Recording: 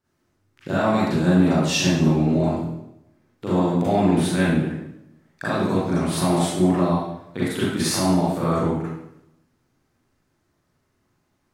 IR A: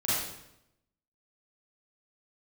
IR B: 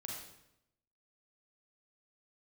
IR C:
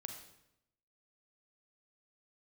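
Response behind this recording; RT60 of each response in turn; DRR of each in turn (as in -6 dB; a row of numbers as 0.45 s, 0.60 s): A; 0.85 s, 0.85 s, 0.85 s; -10.5 dB, -2.0 dB, 4.5 dB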